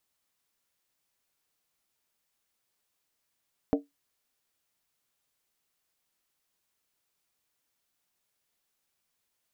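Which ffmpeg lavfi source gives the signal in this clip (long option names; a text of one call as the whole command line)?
ffmpeg -f lavfi -i "aevalsrc='0.119*pow(10,-3*t/0.17)*sin(2*PI*285*t)+0.075*pow(10,-3*t/0.135)*sin(2*PI*454.3*t)+0.0473*pow(10,-3*t/0.116)*sin(2*PI*608.8*t)+0.0299*pow(10,-3*t/0.112)*sin(2*PI*654.4*t)+0.0188*pow(10,-3*t/0.104)*sin(2*PI*756.1*t)':duration=0.63:sample_rate=44100" out.wav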